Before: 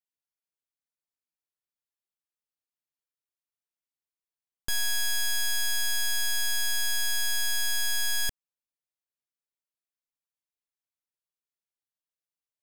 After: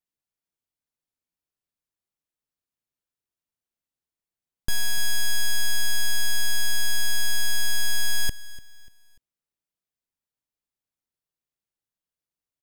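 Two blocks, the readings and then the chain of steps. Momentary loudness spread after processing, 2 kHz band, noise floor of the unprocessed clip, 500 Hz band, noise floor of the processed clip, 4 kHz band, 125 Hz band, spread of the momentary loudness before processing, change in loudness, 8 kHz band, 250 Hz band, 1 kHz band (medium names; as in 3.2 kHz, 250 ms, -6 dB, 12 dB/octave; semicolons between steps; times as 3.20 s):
6 LU, +2.0 dB, under -85 dBFS, +3.5 dB, under -85 dBFS, +1.0 dB, no reading, 3 LU, +1.0 dB, +0.5 dB, +7.5 dB, +1.5 dB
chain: bass shelf 440 Hz +9.5 dB; on a send: feedback delay 294 ms, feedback 40%, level -19 dB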